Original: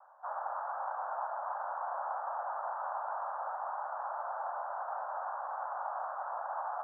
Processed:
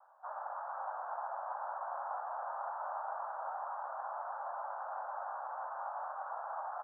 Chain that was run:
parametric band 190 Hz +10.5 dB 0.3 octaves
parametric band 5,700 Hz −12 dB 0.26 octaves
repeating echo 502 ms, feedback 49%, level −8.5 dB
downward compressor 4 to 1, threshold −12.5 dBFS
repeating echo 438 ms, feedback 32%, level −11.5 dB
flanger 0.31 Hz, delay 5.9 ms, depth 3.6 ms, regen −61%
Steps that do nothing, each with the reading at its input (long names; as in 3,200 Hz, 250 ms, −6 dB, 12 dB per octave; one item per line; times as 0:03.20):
parametric band 190 Hz: nothing at its input below 450 Hz
parametric band 5,700 Hz: nothing at its input above 1,800 Hz
downward compressor, threshold −12.5 dBFS: peak of its input −24.5 dBFS